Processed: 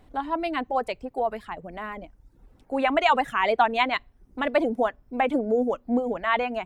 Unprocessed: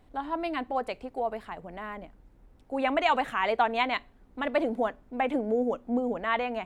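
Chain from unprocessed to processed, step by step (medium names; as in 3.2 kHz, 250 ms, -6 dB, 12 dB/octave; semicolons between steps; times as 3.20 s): reverb removal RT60 0.67 s; trim +4.5 dB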